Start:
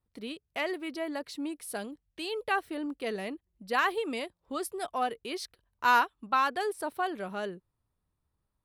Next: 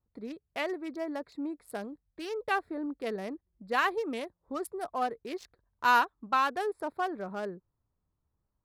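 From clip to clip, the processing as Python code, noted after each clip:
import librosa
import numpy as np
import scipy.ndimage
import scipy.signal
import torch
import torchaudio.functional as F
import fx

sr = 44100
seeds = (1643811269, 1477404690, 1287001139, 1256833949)

y = fx.wiener(x, sr, points=15)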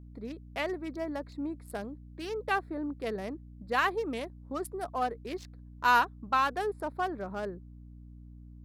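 y = fx.add_hum(x, sr, base_hz=60, snr_db=15)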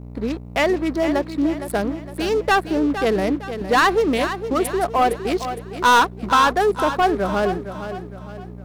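y = fx.leveller(x, sr, passes=3)
y = fx.echo_feedback(y, sr, ms=461, feedback_pct=41, wet_db=-10.5)
y = y * 10.0 ** (4.5 / 20.0)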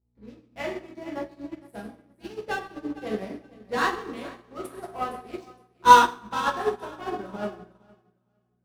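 y = fx.rev_fdn(x, sr, rt60_s=1.1, lf_ratio=1.4, hf_ratio=0.85, size_ms=84.0, drr_db=-3.5)
y = fx.upward_expand(y, sr, threshold_db=-29.0, expansion=2.5)
y = y * 10.0 ** (-4.0 / 20.0)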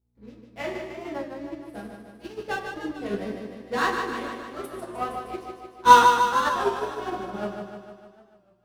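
y = fx.echo_feedback(x, sr, ms=151, feedback_pct=60, wet_db=-6)
y = fx.record_warp(y, sr, rpm=33.33, depth_cents=100.0)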